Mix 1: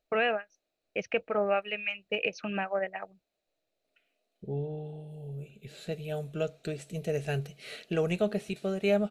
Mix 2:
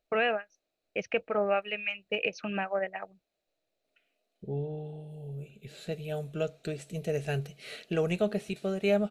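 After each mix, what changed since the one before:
none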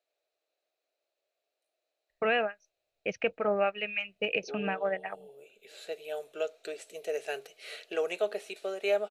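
first voice: entry +2.10 s; second voice: add HPF 410 Hz 24 dB/oct

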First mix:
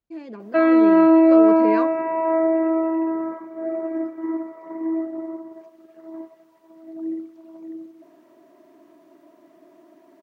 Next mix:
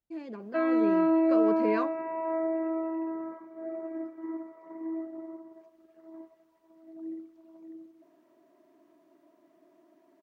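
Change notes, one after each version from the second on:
speech -3.5 dB; background -10.5 dB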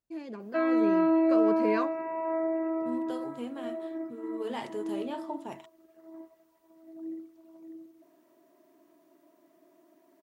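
second voice: unmuted; master: remove LPF 3800 Hz 6 dB/oct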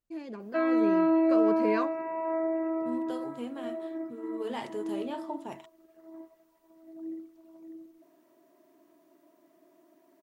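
master: remove HPF 44 Hz

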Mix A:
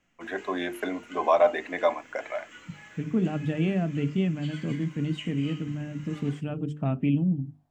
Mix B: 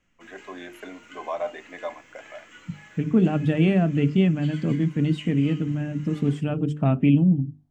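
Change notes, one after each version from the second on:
first voice -9.0 dB; second voice +6.5 dB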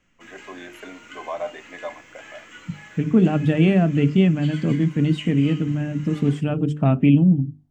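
second voice +3.0 dB; background +5.0 dB

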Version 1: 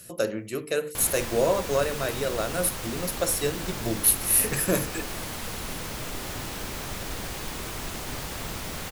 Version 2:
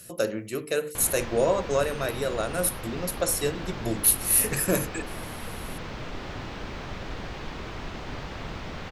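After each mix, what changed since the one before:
background: add air absorption 200 m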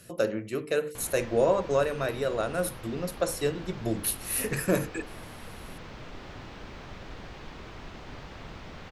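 speech: add high shelf 5600 Hz -12 dB; background -7.0 dB

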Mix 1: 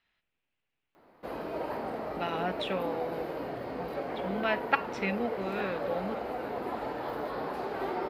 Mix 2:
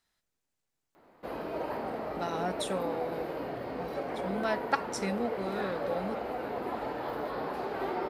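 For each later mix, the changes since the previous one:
speech: remove synth low-pass 2700 Hz, resonance Q 3.3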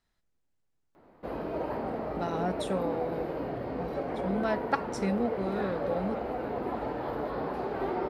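master: add tilt -2 dB/oct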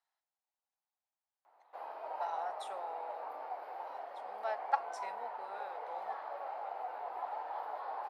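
background: entry +0.50 s; master: add ladder high-pass 720 Hz, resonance 60%

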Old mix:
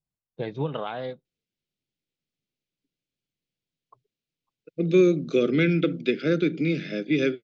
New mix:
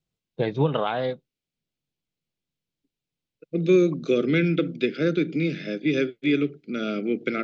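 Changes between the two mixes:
first voice +6.5 dB; second voice: entry -1.25 s

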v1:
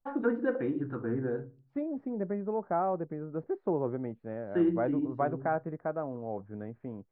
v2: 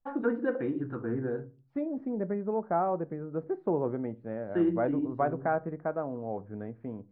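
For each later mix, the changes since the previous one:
second voice: send on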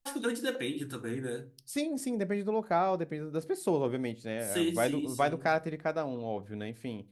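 first voice -4.0 dB; master: remove LPF 1400 Hz 24 dB/oct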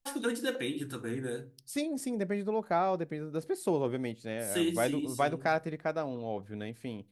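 second voice: send -6.5 dB

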